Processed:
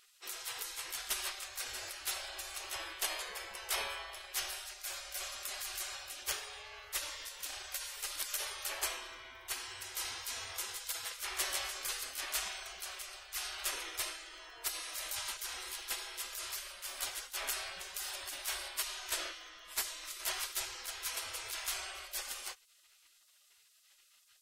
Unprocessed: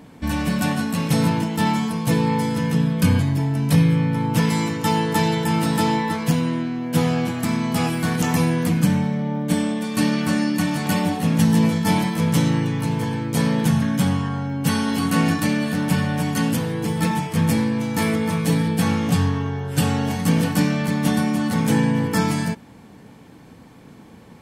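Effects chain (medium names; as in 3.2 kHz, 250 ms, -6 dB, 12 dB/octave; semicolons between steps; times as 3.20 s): spectral gate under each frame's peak -30 dB weak; trim -2.5 dB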